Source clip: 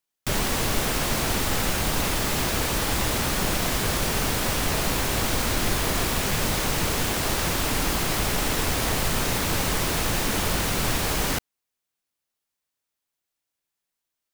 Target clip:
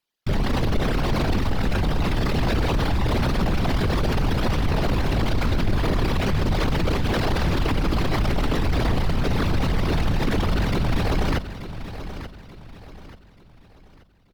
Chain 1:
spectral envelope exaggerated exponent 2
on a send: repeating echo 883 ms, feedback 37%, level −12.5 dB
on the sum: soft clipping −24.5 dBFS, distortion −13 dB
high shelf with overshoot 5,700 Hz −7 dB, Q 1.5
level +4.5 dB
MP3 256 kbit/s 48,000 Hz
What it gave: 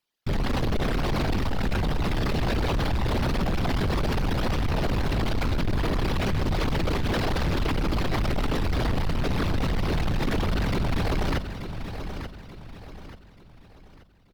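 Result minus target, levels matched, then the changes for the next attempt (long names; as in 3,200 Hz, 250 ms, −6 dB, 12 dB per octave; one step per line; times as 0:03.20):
soft clipping: distortion +17 dB
change: soft clipping −13 dBFS, distortion −29 dB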